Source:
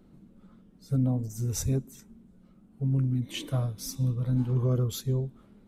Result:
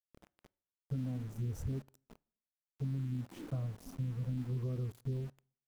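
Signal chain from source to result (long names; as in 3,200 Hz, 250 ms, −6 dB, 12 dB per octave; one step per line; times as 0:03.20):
drawn EQ curve 270 Hz 0 dB, 1,400 Hz −7 dB, 3,200 Hz −24 dB, 12,000 Hz −17 dB
downward compressor 10 to 1, threshold −30 dBFS, peak gain reduction 9 dB
centre clipping without the shift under −46 dBFS
on a send: convolution reverb RT60 0.55 s, pre-delay 18 ms, DRR 24 dB
on the sum: level −3.5 dB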